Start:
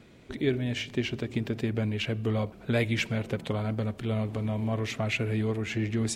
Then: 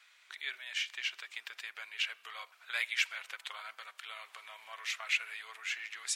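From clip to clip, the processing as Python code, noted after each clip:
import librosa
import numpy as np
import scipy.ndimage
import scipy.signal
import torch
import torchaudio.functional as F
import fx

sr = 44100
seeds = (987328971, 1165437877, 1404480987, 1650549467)

y = scipy.signal.sosfilt(scipy.signal.butter(4, 1200.0, 'highpass', fs=sr, output='sos'), x)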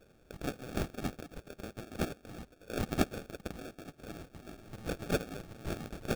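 y = fx.sample_hold(x, sr, seeds[0], rate_hz=1000.0, jitter_pct=0)
y = F.gain(torch.from_numpy(y), 1.0).numpy()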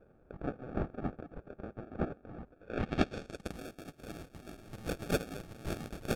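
y = fx.filter_sweep_lowpass(x, sr, from_hz=1200.0, to_hz=14000.0, start_s=2.51, end_s=3.59, q=0.95)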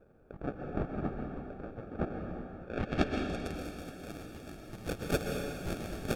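y = fx.rev_plate(x, sr, seeds[1], rt60_s=2.2, hf_ratio=1.0, predelay_ms=110, drr_db=2.0)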